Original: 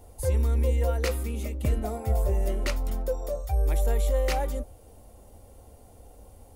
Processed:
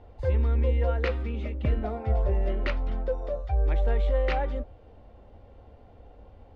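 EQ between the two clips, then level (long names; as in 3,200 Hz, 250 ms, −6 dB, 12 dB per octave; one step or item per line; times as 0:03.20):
low-pass filter 3,500 Hz 24 dB per octave
parametric band 1,600 Hz +3.5 dB 0.54 octaves
0.0 dB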